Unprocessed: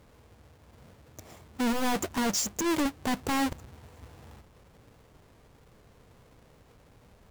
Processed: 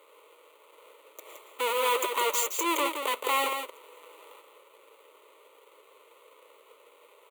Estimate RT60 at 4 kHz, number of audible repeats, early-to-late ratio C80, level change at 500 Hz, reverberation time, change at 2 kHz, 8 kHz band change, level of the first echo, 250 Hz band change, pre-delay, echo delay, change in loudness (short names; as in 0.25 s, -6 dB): none, 1, none, +4.5 dB, none, +3.5 dB, +0.5 dB, -6.5 dB, -11.5 dB, none, 0.169 s, +1.5 dB